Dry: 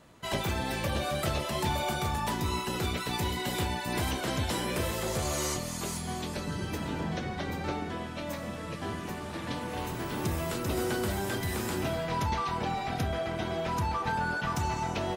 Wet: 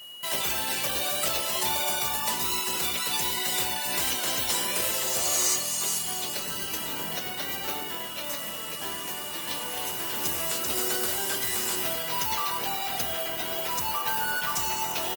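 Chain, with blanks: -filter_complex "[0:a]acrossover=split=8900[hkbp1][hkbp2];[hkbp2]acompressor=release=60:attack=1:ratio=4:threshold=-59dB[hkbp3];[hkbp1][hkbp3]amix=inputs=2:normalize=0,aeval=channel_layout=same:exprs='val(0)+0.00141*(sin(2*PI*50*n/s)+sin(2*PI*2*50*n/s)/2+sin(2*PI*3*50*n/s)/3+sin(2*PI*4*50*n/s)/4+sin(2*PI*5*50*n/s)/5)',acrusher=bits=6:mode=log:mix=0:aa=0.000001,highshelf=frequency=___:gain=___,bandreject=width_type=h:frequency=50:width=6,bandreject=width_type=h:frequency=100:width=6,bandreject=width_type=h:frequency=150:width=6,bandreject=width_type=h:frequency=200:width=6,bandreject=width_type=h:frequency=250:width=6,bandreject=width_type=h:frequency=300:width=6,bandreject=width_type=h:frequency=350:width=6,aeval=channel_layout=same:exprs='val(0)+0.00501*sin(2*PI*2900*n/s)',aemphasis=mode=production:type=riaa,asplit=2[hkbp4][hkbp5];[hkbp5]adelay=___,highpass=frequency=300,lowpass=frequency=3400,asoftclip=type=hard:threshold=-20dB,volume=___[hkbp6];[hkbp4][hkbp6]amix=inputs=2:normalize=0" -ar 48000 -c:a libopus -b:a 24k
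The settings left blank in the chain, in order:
7900, 3.5, 100, -9dB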